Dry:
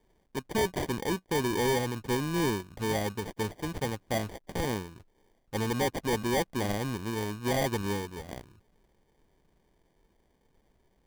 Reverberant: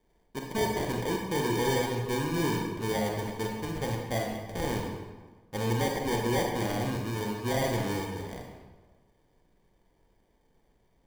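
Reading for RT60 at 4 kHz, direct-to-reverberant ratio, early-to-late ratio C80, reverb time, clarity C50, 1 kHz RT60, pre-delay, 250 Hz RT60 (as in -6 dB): 0.90 s, 0.0 dB, 5.0 dB, 1.3 s, 2.5 dB, 1.3 s, 29 ms, 1.4 s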